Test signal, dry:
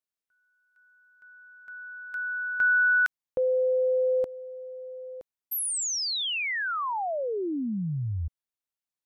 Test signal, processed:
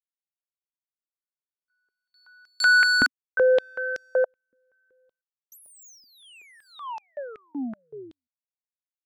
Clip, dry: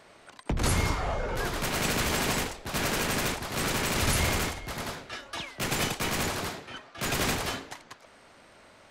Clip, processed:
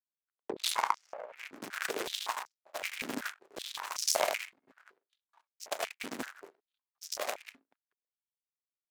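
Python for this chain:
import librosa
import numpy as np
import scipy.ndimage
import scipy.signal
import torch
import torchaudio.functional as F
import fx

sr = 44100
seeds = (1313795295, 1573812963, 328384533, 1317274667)

y = fx.wiener(x, sr, points=15)
y = fx.power_curve(y, sr, exponent=3.0)
y = fx.filter_held_highpass(y, sr, hz=5.3, low_hz=260.0, high_hz=5500.0)
y = y * 10.0 ** (6.0 / 20.0)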